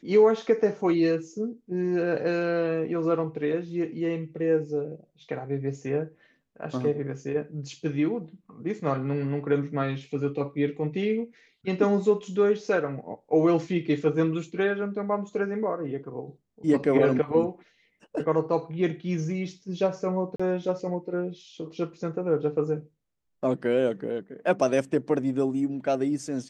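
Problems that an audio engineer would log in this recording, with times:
0:20.36–0:20.39: drop-out 35 ms

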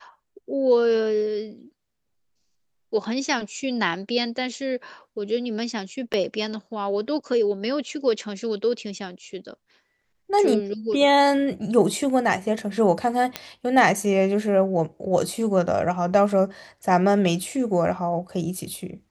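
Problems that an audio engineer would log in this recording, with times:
0:06.13–0:06.14: drop-out 6.9 ms
0:13.36: click −10 dBFS

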